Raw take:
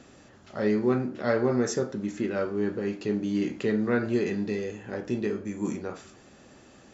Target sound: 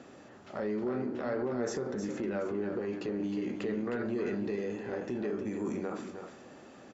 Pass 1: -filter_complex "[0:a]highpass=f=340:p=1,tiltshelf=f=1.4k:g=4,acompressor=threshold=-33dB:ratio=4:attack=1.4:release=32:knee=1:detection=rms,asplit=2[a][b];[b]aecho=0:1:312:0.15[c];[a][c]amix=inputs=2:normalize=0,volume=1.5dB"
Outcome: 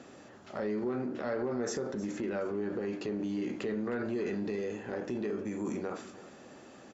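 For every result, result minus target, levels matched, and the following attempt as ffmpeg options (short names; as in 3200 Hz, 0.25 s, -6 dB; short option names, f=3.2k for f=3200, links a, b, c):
echo-to-direct -9 dB; 8000 Hz band +3.5 dB
-filter_complex "[0:a]highpass=f=340:p=1,tiltshelf=f=1.4k:g=4,acompressor=threshold=-33dB:ratio=4:attack=1.4:release=32:knee=1:detection=rms,asplit=2[a][b];[b]aecho=0:1:312:0.422[c];[a][c]amix=inputs=2:normalize=0,volume=1.5dB"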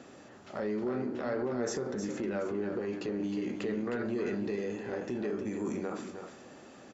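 8000 Hz band +3.5 dB
-filter_complex "[0:a]highpass=f=340:p=1,tiltshelf=f=1.4k:g=4,acompressor=threshold=-33dB:ratio=4:attack=1.4:release=32:knee=1:detection=rms,highshelf=f=4.3k:g=-5,asplit=2[a][b];[b]aecho=0:1:312:0.422[c];[a][c]amix=inputs=2:normalize=0,volume=1.5dB"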